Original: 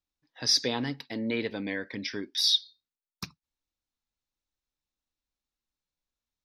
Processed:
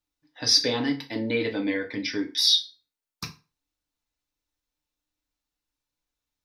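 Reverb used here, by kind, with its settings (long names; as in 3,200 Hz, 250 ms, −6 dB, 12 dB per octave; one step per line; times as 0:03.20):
feedback delay network reverb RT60 0.32 s, low-frequency decay 0.9×, high-frequency decay 0.85×, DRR 1.5 dB
level +2 dB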